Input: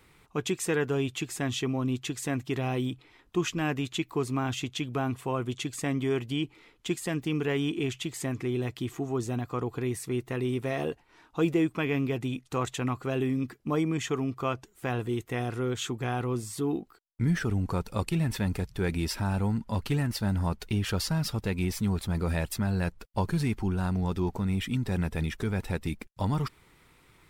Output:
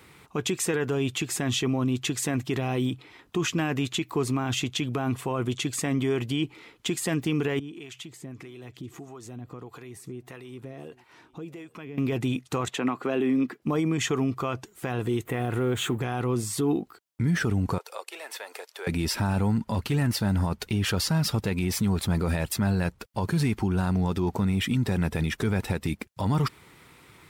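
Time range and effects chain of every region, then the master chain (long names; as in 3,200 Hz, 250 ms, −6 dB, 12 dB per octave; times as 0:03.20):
0:07.59–0:11.98: downward compressor 4 to 1, threshold −44 dBFS + two-band tremolo in antiphase 1.6 Hz, crossover 530 Hz + single-tap delay 835 ms −23.5 dB
0:12.68–0:13.62: high-pass filter 190 Hz 24 dB per octave + bass and treble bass 0 dB, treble −9 dB
0:15.25–0:16.01: mu-law and A-law mismatch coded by mu + parametric band 5,300 Hz −14 dB 0.86 octaves
0:17.78–0:18.87: Butterworth high-pass 460 Hz + downward compressor 2 to 1, threshold −48 dBFS
whole clip: high-pass filter 80 Hz 12 dB per octave; brickwall limiter −25 dBFS; level +7.5 dB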